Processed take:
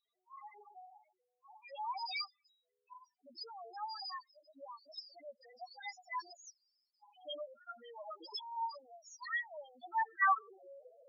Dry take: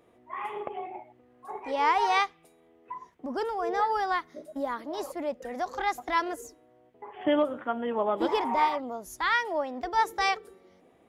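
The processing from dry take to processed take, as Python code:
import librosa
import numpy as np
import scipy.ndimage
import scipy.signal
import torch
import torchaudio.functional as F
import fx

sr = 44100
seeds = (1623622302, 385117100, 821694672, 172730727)

y = fx.delta_hold(x, sr, step_db=-54.5, at=(6.33, 7.05))
y = fx.filter_sweep_bandpass(y, sr, from_hz=5000.0, to_hz=580.0, start_s=9.72, end_s=10.7, q=4.2)
y = fx.spec_topn(y, sr, count=2)
y = fx.attack_slew(y, sr, db_per_s=530.0)
y = F.gain(torch.from_numpy(y), 14.5).numpy()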